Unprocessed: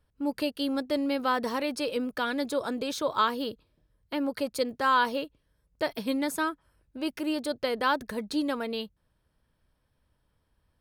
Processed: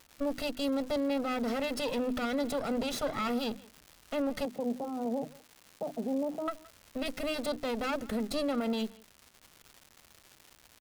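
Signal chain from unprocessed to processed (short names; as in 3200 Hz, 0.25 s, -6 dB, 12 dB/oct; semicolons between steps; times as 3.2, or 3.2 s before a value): minimum comb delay 1.5 ms; bell 270 Hz +11.5 dB 1.2 oct; notches 50/100/150/200/250/300 Hz; limiter -24 dBFS, peak gain reduction 11 dB; 4.45–6.48 elliptic band-pass 150–860 Hz; crackle 330/s -41 dBFS; speakerphone echo 0.17 s, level -20 dB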